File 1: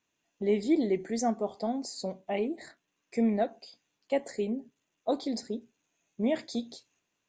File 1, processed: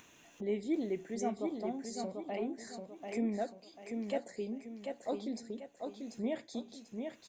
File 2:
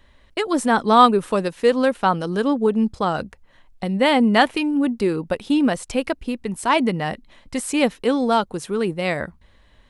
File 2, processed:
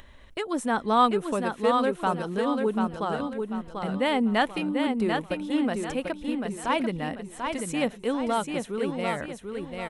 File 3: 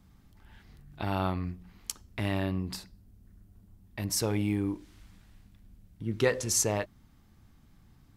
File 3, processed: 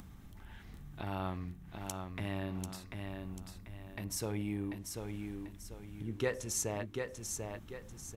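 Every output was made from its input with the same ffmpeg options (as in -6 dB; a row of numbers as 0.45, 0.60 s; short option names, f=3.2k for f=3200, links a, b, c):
-filter_complex "[0:a]equalizer=f=4.7k:w=4.4:g=-7,acompressor=mode=upward:threshold=-31dB:ratio=2.5,asplit=2[a][b];[b]aecho=0:1:741|1482|2223|2964|3705:0.562|0.208|0.077|0.0285|0.0105[c];[a][c]amix=inputs=2:normalize=0,volume=-8dB"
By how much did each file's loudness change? -7.5, -7.0, -9.0 LU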